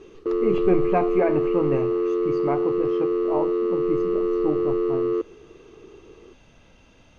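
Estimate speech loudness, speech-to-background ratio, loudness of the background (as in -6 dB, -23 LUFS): -28.0 LUFS, -4.5 dB, -23.5 LUFS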